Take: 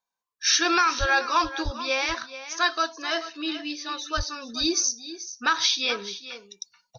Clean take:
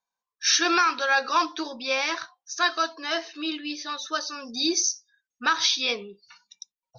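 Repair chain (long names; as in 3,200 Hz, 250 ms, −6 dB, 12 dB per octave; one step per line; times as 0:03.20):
high-pass at the plosives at 0:00.99/0:01.64/0:04.16
echo removal 433 ms −13.5 dB
level 0 dB, from 0:06.20 −4.5 dB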